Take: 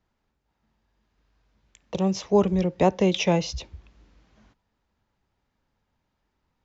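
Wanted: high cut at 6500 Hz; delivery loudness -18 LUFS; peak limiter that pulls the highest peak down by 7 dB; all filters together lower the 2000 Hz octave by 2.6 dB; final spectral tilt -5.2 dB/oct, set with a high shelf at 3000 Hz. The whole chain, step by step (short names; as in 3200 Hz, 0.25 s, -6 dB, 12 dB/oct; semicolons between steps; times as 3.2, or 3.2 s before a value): LPF 6500 Hz; bell 2000 Hz -8.5 dB; high shelf 3000 Hz +8.5 dB; gain +8 dB; limiter -6.5 dBFS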